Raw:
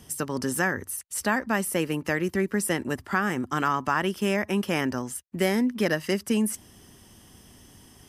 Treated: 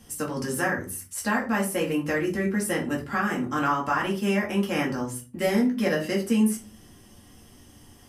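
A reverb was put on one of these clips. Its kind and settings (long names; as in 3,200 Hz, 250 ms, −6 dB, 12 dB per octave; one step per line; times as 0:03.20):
rectangular room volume 180 cubic metres, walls furnished, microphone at 2.2 metres
level −5 dB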